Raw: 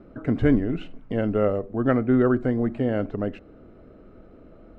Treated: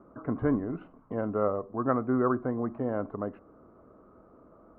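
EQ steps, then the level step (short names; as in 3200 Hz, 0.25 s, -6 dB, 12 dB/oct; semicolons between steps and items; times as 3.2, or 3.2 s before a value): HPF 94 Hz 6 dB/oct; synth low-pass 1100 Hz, resonance Q 4.9; -7.5 dB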